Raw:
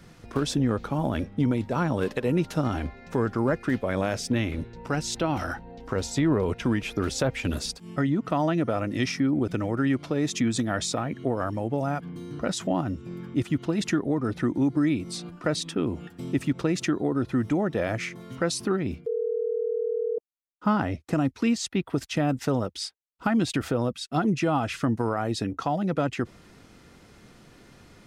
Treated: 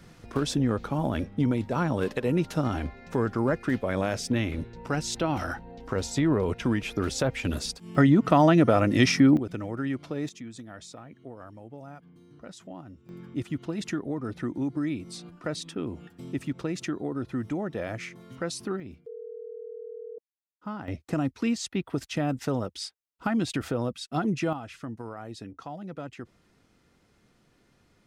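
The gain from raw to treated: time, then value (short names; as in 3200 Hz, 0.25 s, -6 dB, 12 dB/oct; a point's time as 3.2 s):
-1 dB
from 7.95 s +6 dB
from 9.37 s -6 dB
from 10.29 s -16.5 dB
from 13.09 s -6 dB
from 18.8 s -13 dB
from 20.88 s -3 dB
from 24.53 s -12.5 dB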